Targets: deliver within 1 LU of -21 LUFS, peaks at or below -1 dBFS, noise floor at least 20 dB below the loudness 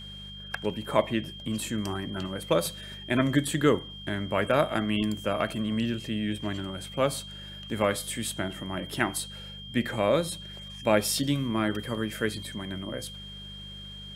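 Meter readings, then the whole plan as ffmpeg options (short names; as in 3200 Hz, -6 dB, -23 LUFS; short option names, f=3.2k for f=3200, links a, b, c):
hum 50 Hz; harmonics up to 200 Hz; hum level -43 dBFS; steady tone 3200 Hz; tone level -42 dBFS; loudness -29.0 LUFS; peak -7.0 dBFS; loudness target -21.0 LUFS
-> -af "bandreject=f=50:t=h:w=4,bandreject=f=100:t=h:w=4,bandreject=f=150:t=h:w=4,bandreject=f=200:t=h:w=4"
-af "bandreject=f=3.2k:w=30"
-af "volume=8dB,alimiter=limit=-1dB:level=0:latency=1"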